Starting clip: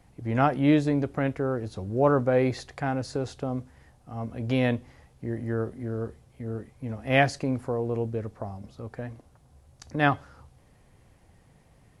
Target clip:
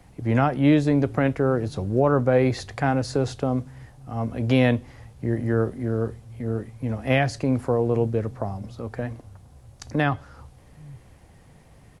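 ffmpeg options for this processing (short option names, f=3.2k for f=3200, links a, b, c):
-filter_complex "[0:a]acrossover=split=130[a][b];[a]aecho=1:1:822:0.282[c];[b]alimiter=limit=-16dB:level=0:latency=1:release=389[d];[c][d]amix=inputs=2:normalize=0,volume=6.5dB"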